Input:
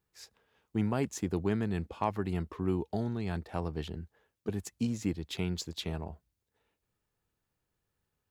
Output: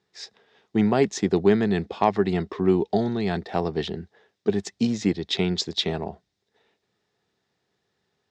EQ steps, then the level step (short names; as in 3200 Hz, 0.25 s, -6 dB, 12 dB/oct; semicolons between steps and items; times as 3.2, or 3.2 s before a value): speaker cabinet 130–7100 Hz, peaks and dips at 200 Hz +5 dB, 400 Hz +8 dB, 720 Hz +7 dB, 1900 Hz +7 dB, 3700 Hz +9 dB, 5200 Hz +6 dB; +7.0 dB